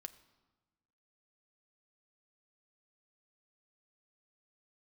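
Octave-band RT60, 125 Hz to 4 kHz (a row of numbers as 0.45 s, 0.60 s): 1.6 s, 1.6 s, 1.2 s, 1.2 s, 0.95 s, 0.90 s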